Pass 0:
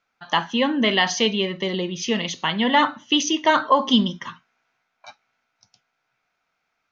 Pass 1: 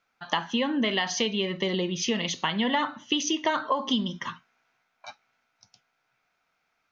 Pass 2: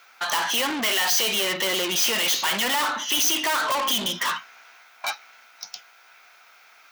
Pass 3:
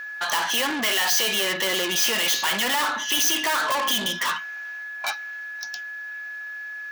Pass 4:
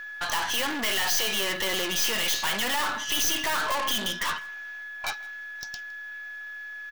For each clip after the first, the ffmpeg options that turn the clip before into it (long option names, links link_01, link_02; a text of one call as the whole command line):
ffmpeg -i in.wav -af "acompressor=threshold=-23dB:ratio=5" out.wav
ffmpeg -i in.wav -filter_complex "[0:a]asplit=2[link_01][link_02];[link_02]highpass=frequency=720:poles=1,volume=36dB,asoftclip=type=tanh:threshold=-9.5dB[link_03];[link_01][link_03]amix=inputs=2:normalize=0,lowpass=frequency=2100:poles=1,volume=-6dB,aemphasis=mode=production:type=riaa,volume=-7dB" out.wav
ffmpeg -i in.wav -af "aeval=exprs='val(0)+0.0251*sin(2*PI*1700*n/s)':channel_layout=same" out.wav
ffmpeg -i in.wav -af "aeval=exprs='(tanh(7.94*val(0)+0.7)-tanh(0.7))/7.94':channel_layout=same,aecho=1:1:161:0.0668" out.wav